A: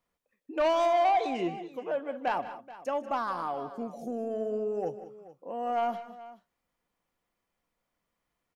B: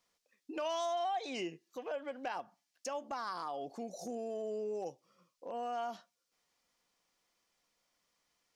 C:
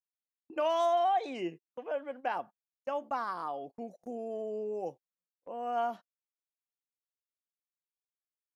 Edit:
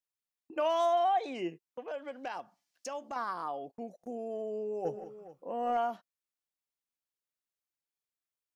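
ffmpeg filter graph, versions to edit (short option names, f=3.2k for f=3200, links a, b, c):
-filter_complex "[2:a]asplit=3[a][b][c];[a]atrim=end=1.882[d];[1:a]atrim=start=1.878:end=3.162[e];[b]atrim=start=3.158:end=4.852[f];[0:a]atrim=start=4.848:end=5.772[g];[c]atrim=start=5.768[h];[d][e]acrossfade=d=0.004:c1=hsin:c2=hsin[i];[i][f]acrossfade=d=0.004:c1=hsin:c2=hsin[j];[j][g]acrossfade=d=0.004:c1=hsin:c2=hsin[k];[k][h]acrossfade=d=0.004:c1=hsin:c2=hsin"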